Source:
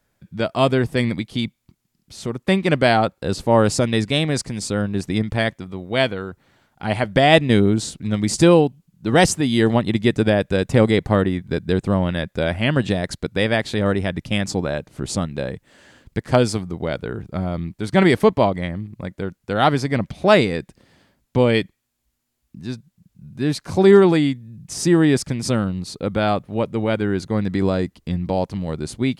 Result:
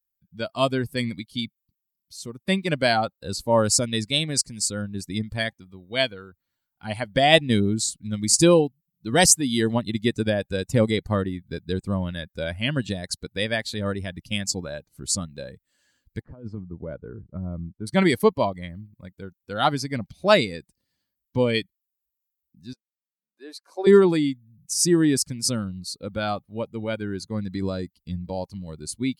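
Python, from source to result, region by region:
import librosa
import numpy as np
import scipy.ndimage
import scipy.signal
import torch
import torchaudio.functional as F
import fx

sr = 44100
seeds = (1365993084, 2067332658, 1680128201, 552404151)

y = fx.chain(x, sr, fx.lowpass(hz=1100.0, slope=12),
    fx.over_compress(threshold_db=-23.0, ratio=-1.0),
    fx.dynamic_eq(hz=750.0, q=3.1, threshold_db=-42.0, ratio=4.0, max_db=-5), at=(16.22, 17.87))
y = fx.chain(y, sr, fx.highpass(hz=410.0, slope=24),
    fx.high_shelf(hz=2200.0, db=-10.5), at=(22.73, 23.87))
y = fx.bin_expand(y, sr, power=1.5)
y = fx.bass_treble(y, sr, bass_db=-2, treble_db=12)
y = fx.notch(y, sr, hz=800.0, q=26.0)
y = F.gain(torch.from_numpy(y), -1.5).numpy()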